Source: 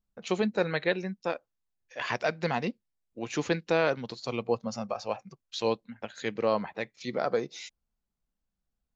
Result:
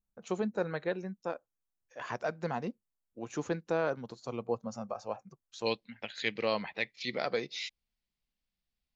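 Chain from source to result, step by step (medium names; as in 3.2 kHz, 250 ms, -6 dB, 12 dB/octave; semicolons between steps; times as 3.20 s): high-order bell 3.1 kHz -8.5 dB, from 5.65 s +10.5 dB; trim -5 dB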